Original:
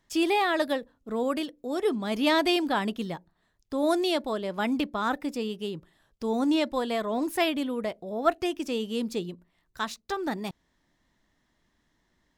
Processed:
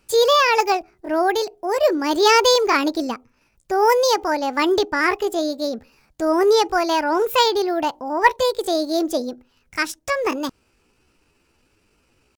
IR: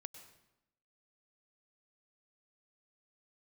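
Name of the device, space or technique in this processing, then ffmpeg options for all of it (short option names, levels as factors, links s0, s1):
chipmunk voice: -af "asetrate=62367,aresample=44100,atempo=0.707107,volume=2.82"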